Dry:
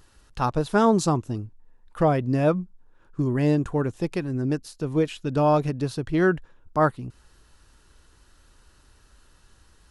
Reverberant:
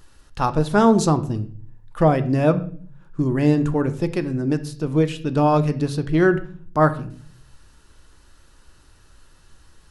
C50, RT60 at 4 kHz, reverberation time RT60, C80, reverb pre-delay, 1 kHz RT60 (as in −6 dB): 15.0 dB, 0.40 s, 0.45 s, 18.5 dB, 3 ms, 0.40 s